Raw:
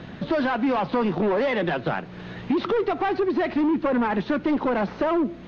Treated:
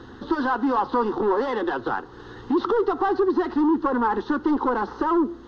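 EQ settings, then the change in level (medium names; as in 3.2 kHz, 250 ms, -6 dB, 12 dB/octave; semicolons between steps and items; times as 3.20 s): dynamic bell 920 Hz, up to +4 dB, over -38 dBFS, Q 1.2; static phaser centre 630 Hz, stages 6; +2.0 dB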